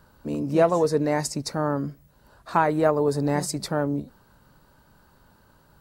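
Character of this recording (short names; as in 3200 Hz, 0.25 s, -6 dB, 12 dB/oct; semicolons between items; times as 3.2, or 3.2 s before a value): noise floor -59 dBFS; spectral tilt -5.5 dB/oct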